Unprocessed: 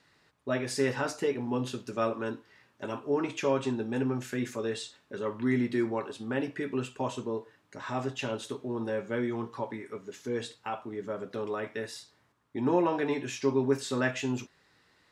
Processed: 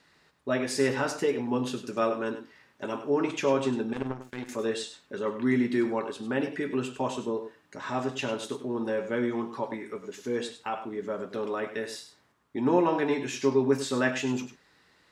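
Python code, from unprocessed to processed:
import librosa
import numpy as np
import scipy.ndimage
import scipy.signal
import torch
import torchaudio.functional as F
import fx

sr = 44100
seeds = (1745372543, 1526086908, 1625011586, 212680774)

p1 = fx.peak_eq(x, sr, hz=110.0, db=-9.5, octaves=0.29)
p2 = fx.power_curve(p1, sr, exponent=2.0, at=(3.93, 4.49))
p3 = p2 + fx.echo_single(p2, sr, ms=99, db=-11.0, dry=0)
y = F.gain(torch.from_numpy(p3), 2.5).numpy()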